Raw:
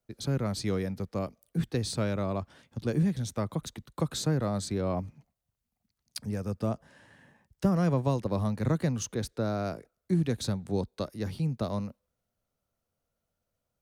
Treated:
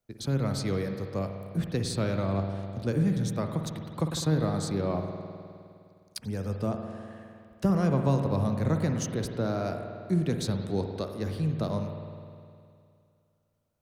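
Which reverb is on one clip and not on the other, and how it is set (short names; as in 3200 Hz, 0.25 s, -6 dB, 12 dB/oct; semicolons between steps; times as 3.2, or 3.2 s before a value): spring tank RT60 2.4 s, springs 51 ms, chirp 45 ms, DRR 4.5 dB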